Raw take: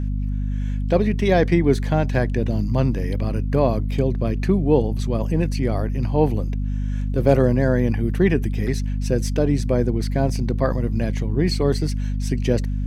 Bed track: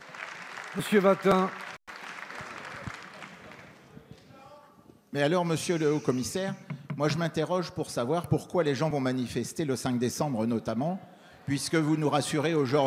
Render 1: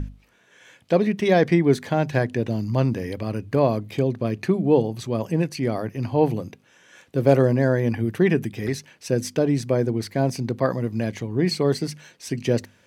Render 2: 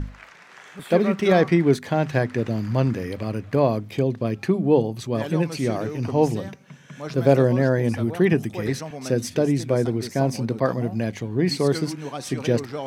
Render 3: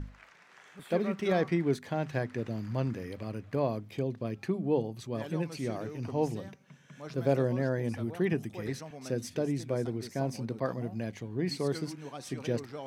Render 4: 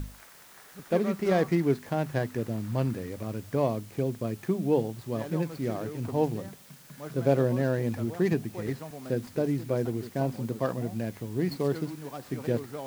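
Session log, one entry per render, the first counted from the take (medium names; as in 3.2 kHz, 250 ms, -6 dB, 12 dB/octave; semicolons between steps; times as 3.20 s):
hum notches 50/100/150/200/250 Hz
add bed track -6.5 dB
trim -10.5 dB
median filter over 15 samples; in parallel at -6 dB: word length cut 8-bit, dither triangular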